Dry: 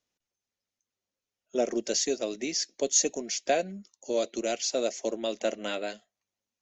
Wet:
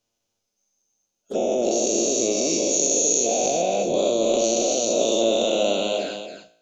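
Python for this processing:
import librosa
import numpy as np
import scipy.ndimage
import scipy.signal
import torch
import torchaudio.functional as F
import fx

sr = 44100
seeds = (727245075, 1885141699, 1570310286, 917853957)

p1 = fx.spec_dilate(x, sr, span_ms=480)
p2 = fx.peak_eq(p1, sr, hz=1900.0, db=-9.0, octaves=0.7)
p3 = fx.over_compress(p2, sr, threshold_db=-24.0, ratio=-0.5)
p4 = p2 + (p3 * librosa.db_to_amplitude(2.0))
p5 = fx.env_flanger(p4, sr, rest_ms=8.9, full_db=-15.5)
p6 = fx.comb_fb(p5, sr, f0_hz=57.0, decay_s=0.73, harmonics='all', damping=0.0, mix_pct=50)
y = p6 + fx.echo_single(p6, sr, ms=275, db=-8.0, dry=0)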